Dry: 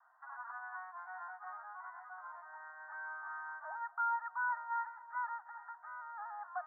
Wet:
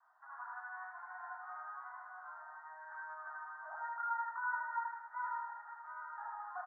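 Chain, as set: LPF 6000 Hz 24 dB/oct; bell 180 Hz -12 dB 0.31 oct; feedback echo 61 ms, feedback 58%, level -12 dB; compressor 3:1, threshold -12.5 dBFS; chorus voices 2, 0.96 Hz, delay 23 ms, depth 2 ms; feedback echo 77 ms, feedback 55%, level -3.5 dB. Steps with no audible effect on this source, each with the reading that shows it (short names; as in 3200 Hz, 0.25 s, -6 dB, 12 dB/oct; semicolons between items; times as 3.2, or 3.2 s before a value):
LPF 6000 Hz: input band ends at 1900 Hz; bell 180 Hz: input band starts at 600 Hz; compressor, threshold -12.5 dBFS: input peak -26.5 dBFS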